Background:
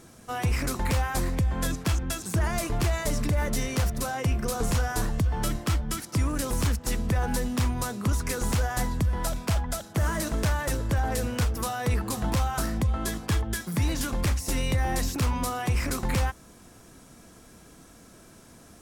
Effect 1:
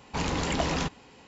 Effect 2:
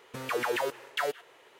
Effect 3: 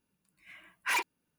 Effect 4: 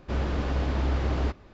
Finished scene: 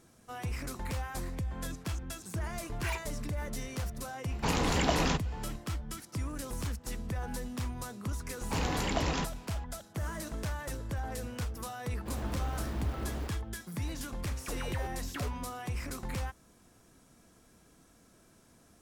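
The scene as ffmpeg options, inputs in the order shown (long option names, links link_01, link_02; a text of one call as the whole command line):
ffmpeg -i bed.wav -i cue0.wav -i cue1.wav -i cue2.wav -i cue3.wav -filter_complex "[1:a]asplit=2[link_01][link_02];[0:a]volume=-10.5dB[link_03];[4:a]acrusher=bits=6:mode=log:mix=0:aa=0.000001[link_04];[3:a]atrim=end=1.38,asetpts=PTS-STARTPTS,volume=-8.5dB,afade=type=in:duration=0.004:curve=hsin,afade=type=out:start_time=1.376:duration=0.004:curve=hsin,adelay=1960[link_05];[link_01]atrim=end=1.27,asetpts=PTS-STARTPTS,volume=-0.5dB,afade=type=in:duration=0.004:curve=hsin,afade=type=out:start_time=1.266:duration=0.004:curve=hsin,adelay=189189S[link_06];[link_02]atrim=end=1.27,asetpts=PTS-STARTPTS,volume=-4dB,afade=type=in:duration=0.004:curve=hsin,afade=type=out:start_time=1.266:duration=0.004:curve=hsin,adelay=8370[link_07];[link_04]atrim=end=1.53,asetpts=PTS-STARTPTS,volume=-10.5dB,afade=type=in:duration=0.004:curve=hsin,afade=type=out:start_time=1.526:duration=0.004:curve=hsin,adelay=11970[link_08];[2:a]atrim=end=1.59,asetpts=PTS-STARTPTS,volume=-12.5dB,afade=type=in:duration=0.004:curve=hsin,afade=type=out:start_time=1.586:duration=0.004:curve=hsin,adelay=14170[link_09];[link_03][link_05][link_06][link_07][link_08][link_09]amix=inputs=6:normalize=0" out.wav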